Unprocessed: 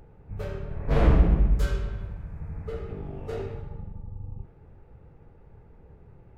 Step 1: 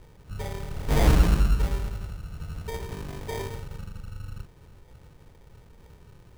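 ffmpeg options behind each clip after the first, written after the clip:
-af "acrusher=samples=32:mix=1:aa=0.000001"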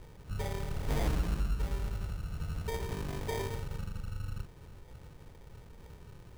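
-af "acompressor=threshold=-31dB:ratio=3"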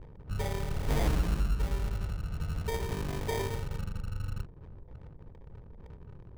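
-af "anlmdn=0.000631,volume=3dB"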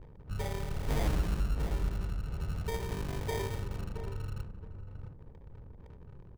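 -filter_complex "[0:a]asplit=2[a][b];[b]adelay=671,lowpass=f=850:p=1,volume=-7.5dB,asplit=2[c][d];[d]adelay=671,lowpass=f=850:p=1,volume=0.18,asplit=2[e][f];[f]adelay=671,lowpass=f=850:p=1,volume=0.18[g];[a][c][e][g]amix=inputs=4:normalize=0,volume=-2.5dB"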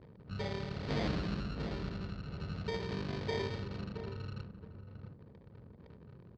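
-af "highpass=110,equalizer=f=210:t=q:w=4:g=5,equalizer=f=860:t=q:w=4:g=-5,equalizer=f=4.4k:t=q:w=4:g=7,lowpass=f=4.9k:w=0.5412,lowpass=f=4.9k:w=1.3066"

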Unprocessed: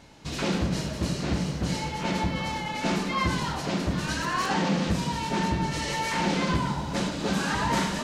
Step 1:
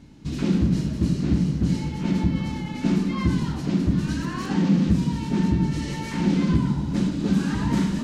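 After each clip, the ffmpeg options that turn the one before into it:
-af "lowshelf=f=400:t=q:w=1.5:g=11.5,volume=-6dB"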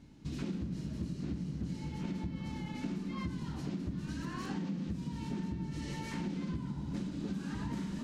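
-af "acompressor=threshold=-26dB:ratio=6,volume=-8.5dB"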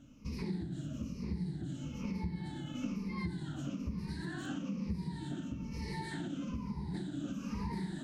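-af "afftfilt=real='re*pow(10,16/40*sin(2*PI*(0.86*log(max(b,1)*sr/1024/100)/log(2)-(-1.1)*(pts-256)/sr)))':imag='im*pow(10,16/40*sin(2*PI*(0.86*log(max(b,1)*sr/1024/100)/log(2)-(-1.1)*(pts-256)/sr)))':win_size=1024:overlap=0.75,volume=-3.5dB"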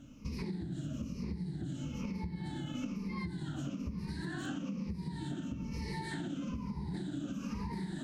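-af "acompressor=threshold=-39dB:ratio=6,volume=4dB"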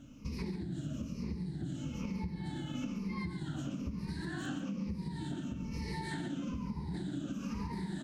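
-af "aecho=1:1:138:0.282"

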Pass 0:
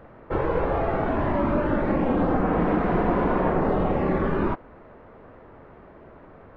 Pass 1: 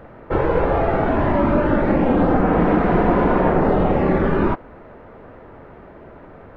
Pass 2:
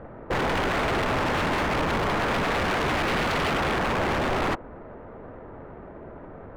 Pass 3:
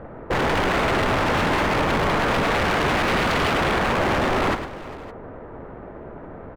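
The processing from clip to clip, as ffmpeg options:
-af "bandreject=f=1.1k:w=18,volume=6dB"
-af "adynamicsmooth=sensitivity=2.5:basefreq=2.1k,aeval=exprs='0.1*(abs(mod(val(0)/0.1+3,4)-2)-1)':c=same"
-af "aecho=1:1:107|403|563:0.335|0.126|0.1,volume=3.5dB"

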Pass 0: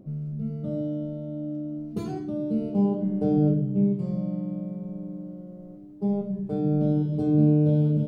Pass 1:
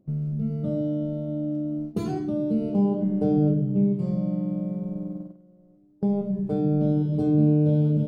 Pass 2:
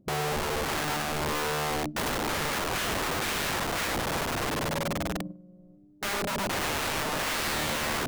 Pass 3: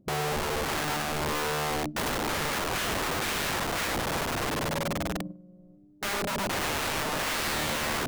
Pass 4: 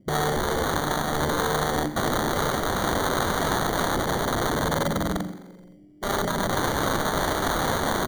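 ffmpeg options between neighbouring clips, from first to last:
-filter_complex "[0:a]agate=range=-18dB:threshold=-35dB:ratio=16:detection=peak,asplit=2[a][b];[b]acompressor=threshold=-29dB:ratio=6,volume=2.5dB[c];[a][c]amix=inputs=2:normalize=0,volume=-2.5dB"
-af "lowshelf=f=200:g=7,aeval=exprs='(mod(15.8*val(0)+1,2)-1)/15.8':c=same,volume=-1dB"
-af anull
-filter_complex "[0:a]acrossover=split=500[a][b];[b]acrusher=samples=17:mix=1:aa=0.000001[c];[a][c]amix=inputs=2:normalize=0,asplit=7[d][e][f][g][h][i][j];[e]adelay=86,afreqshift=42,volume=-15dB[k];[f]adelay=172,afreqshift=84,volume=-19.6dB[l];[g]adelay=258,afreqshift=126,volume=-24.2dB[m];[h]adelay=344,afreqshift=168,volume=-28.7dB[n];[i]adelay=430,afreqshift=210,volume=-33.3dB[o];[j]adelay=516,afreqshift=252,volume=-37.9dB[p];[d][k][l][m][n][o][p]amix=inputs=7:normalize=0,volume=5dB"

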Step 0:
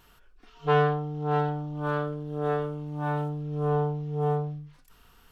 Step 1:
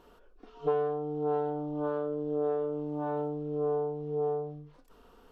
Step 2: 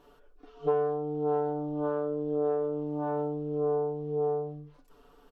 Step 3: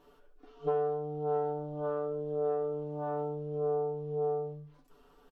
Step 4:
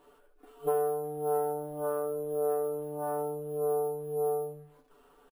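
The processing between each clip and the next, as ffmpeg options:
-af "lowpass=f=3.7k:p=1,acompressor=threshold=-33dB:ratio=10,equalizer=f=125:t=o:w=1:g=-8,equalizer=f=250:t=o:w=1:g=8,equalizer=f=500:t=o:w=1:g=12,equalizer=f=1k:t=o:w=1:g=3,equalizer=f=2k:t=o:w=1:g=-5,volume=-2.5dB"
-af "aecho=1:1:6.9:0.65,volume=-2.5dB"
-af "aecho=1:1:12|72:0.398|0.282,volume=-3.5dB"
-filter_complex "[0:a]bass=f=250:g=-8,treble=f=4k:g=-5,asplit=2[a][b];[b]adelay=360,highpass=300,lowpass=3.4k,asoftclip=type=hard:threshold=-29dB,volume=-30dB[c];[a][c]amix=inputs=2:normalize=0,acrusher=samples=4:mix=1:aa=0.000001,volume=2.5dB"

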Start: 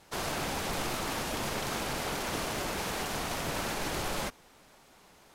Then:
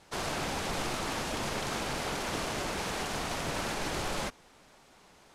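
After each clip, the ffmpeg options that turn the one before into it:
-af "lowpass=10k"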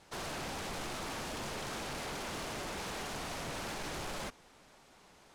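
-af "asoftclip=type=tanh:threshold=-34.5dB,volume=-2dB"

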